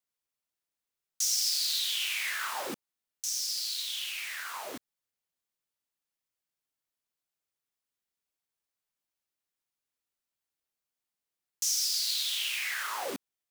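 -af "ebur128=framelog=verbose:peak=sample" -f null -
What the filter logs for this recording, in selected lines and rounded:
Integrated loudness:
  I:         -29.7 LUFS
  Threshold: -40.1 LUFS
Loudness range:
  LRA:        11.9 LU
  Threshold: -53.0 LUFS
  LRA low:   -41.8 LUFS
  LRA high:  -29.8 LUFS
Sample peak:
  Peak:      -16.6 dBFS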